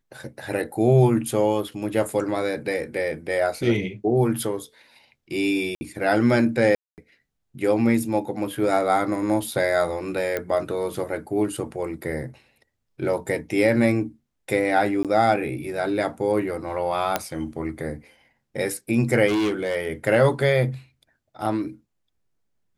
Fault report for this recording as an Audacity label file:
5.750000	5.810000	drop-out 60 ms
6.750000	6.980000	drop-out 228 ms
10.370000	10.370000	click −12 dBFS
15.030000	15.050000	drop-out 17 ms
17.160000	17.160000	click −6 dBFS
19.270000	19.760000	clipping −19.5 dBFS

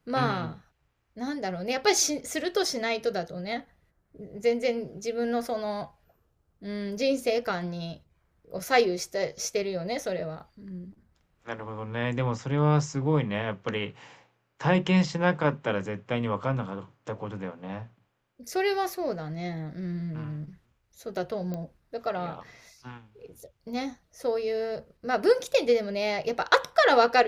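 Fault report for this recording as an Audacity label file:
21.540000	21.540000	click −22 dBFS

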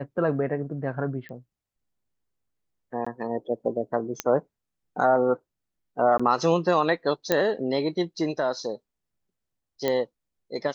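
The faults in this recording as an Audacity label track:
1.290000	1.290000	click −29 dBFS
3.050000	3.060000	drop-out 15 ms
4.200000	4.200000	click −10 dBFS
6.180000	6.200000	drop-out 15 ms
7.320000	7.320000	click −7 dBFS
9.880000	9.880000	click −12 dBFS

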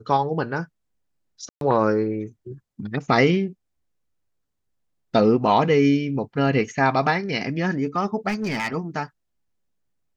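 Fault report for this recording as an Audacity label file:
1.490000	1.610000	drop-out 122 ms
8.280000	8.750000	clipping −21 dBFS

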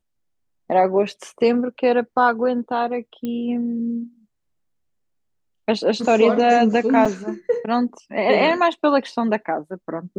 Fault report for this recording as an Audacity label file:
3.250000	3.250000	click −16 dBFS
7.050000	7.060000	drop-out 5.6 ms

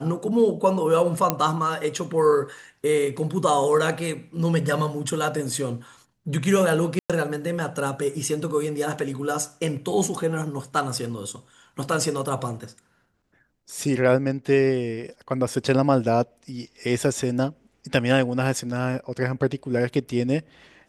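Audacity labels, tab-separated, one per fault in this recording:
1.300000	1.300000	click −4 dBFS
6.990000	7.100000	drop-out 106 ms

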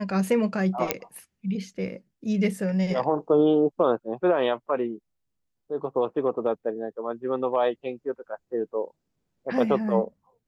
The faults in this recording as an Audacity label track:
0.910000	0.910000	click −5 dBFS

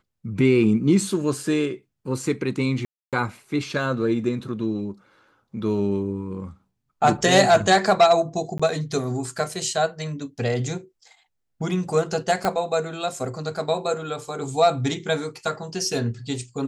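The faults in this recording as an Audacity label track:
2.850000	3.130000	drop-out 277 ms
8.580000	8.600000	drop-out 15 ms
12.450000	12.450000	click −9 dBFS

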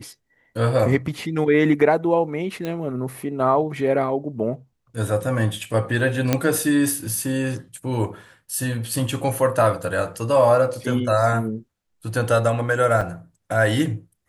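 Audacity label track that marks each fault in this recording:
2.650000	2.650000	click −15 dBFS
6.330000	6.330000	click −4 dBFS
13.010000	13.010000	drop-out 4.5 ms

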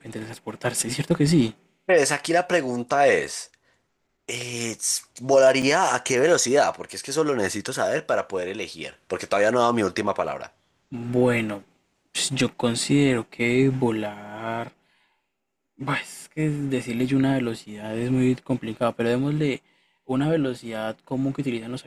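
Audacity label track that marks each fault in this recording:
5.620000	5.630000	drop-out 6.1 ms

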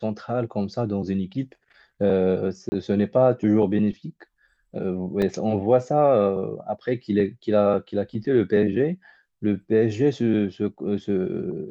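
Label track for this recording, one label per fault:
2.690000	2.720000	drop-out 30 ms
5.220000	5.220000	drop-out 2.6 ms

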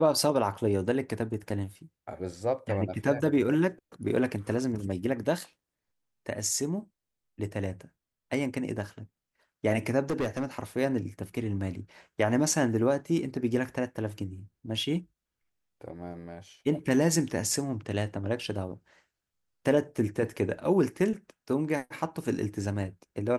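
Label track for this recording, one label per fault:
10.020000	10.450000	clipping −25 dBFS

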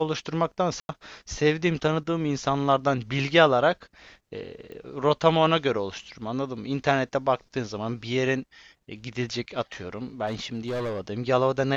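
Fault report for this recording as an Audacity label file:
0.800000	0.890000	drop-out 91 ms
4.720000	4.720000	click −30 dBFS
10.260000	11.010000	clipping −26 dBFS

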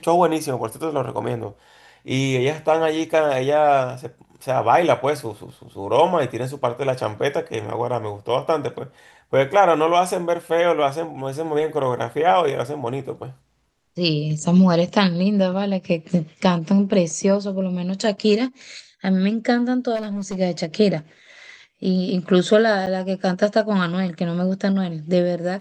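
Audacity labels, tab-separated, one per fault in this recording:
19.950000	20.360000	clipping −23 dBFS
22.860000	22.870000	drop-out 8.1 ms

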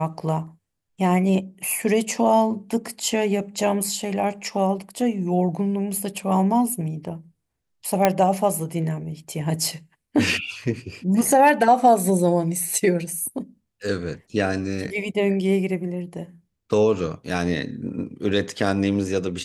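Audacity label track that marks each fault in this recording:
8.050000	8.050000	click −3 dBFS

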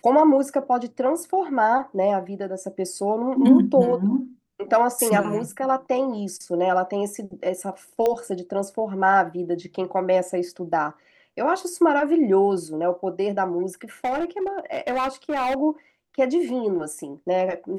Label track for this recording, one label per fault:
8.060000	8.060000	click −11 dBFS
14.040000	15.570000	clipping −20.5 dBFS

